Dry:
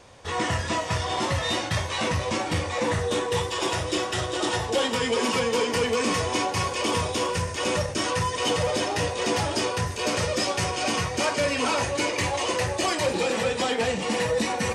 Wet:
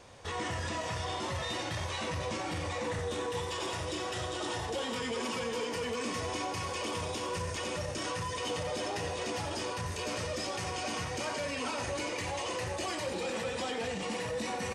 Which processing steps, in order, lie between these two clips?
peak limiter -24.5 dBFS, peak gain reduction 9.5 dB; feedback delay 91 ms, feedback 37%, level -10 dB; trim -3.5 dB

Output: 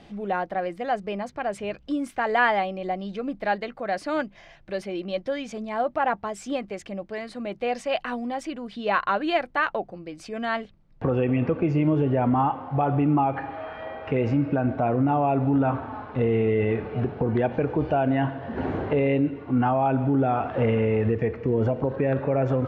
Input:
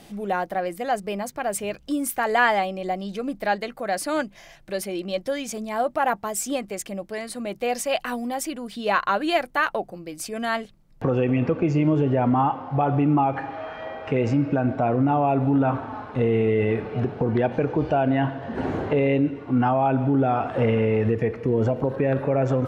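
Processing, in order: low-pass 3.7 kHz 12 dB/octave; peaking EQ 78 Hz +10 dB 0.21 oct; trim -1.5 dB

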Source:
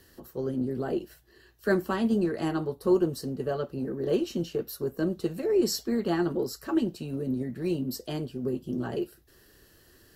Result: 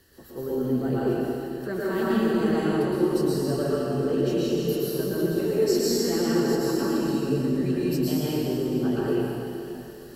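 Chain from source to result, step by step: peak limiter -22 dBFS, peak gain reduction 8.5 dB; reverberation RT60 3.0 s, pre-delay 103 ms, DRR -8.5 dB; trim -2 dB

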